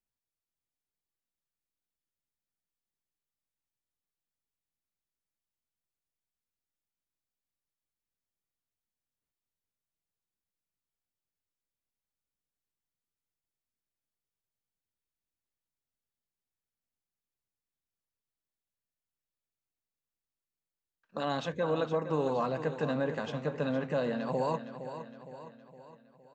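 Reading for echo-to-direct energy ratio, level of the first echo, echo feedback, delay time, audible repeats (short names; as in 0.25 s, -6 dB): -9.5 dB, -11.0 dB, 51%, 0.463 s, 5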